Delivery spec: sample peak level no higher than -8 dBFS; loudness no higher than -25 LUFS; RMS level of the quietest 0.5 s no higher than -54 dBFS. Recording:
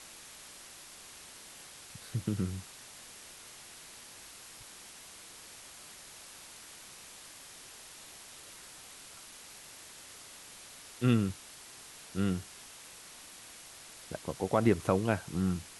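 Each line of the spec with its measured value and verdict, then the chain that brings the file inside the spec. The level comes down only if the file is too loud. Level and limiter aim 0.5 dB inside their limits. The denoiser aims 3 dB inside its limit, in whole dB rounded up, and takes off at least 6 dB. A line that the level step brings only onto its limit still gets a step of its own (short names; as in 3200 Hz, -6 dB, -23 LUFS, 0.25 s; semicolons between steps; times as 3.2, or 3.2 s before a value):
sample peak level -12.5 dBFS: OK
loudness -38.5 LUFS: OK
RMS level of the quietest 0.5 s -51 dBFS: fail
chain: denoiser 6 dB, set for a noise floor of -51 dBFS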